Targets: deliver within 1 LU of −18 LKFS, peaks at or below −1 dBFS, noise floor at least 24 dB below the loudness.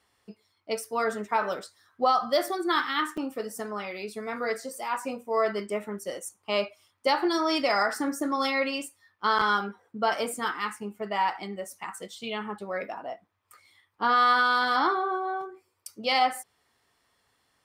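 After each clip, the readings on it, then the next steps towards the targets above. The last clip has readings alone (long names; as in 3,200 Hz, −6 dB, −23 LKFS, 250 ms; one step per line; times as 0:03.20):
number of dropouts 1; longest dropout 5.6 ms; integrated loudness −28.0 LKFS; sample peak −12.5 dBFS; target loudness −18.0 LKFS
→ repair the gap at 0:03.17, 5.6 ms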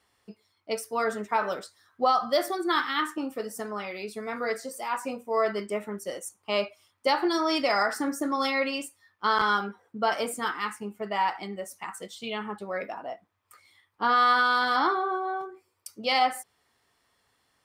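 number of dropouts 0; integrated loudness −28.0 LKFS; sample peak −12.5 dBFS; target loudness −18.0 LKFS
→ level +10 dB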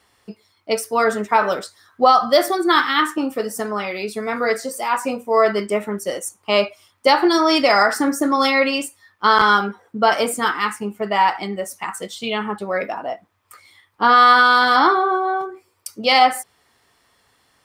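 integrated loudness −18.0 LKFS; sample peak −2.5 dBFS; background noise floor −62 dBFS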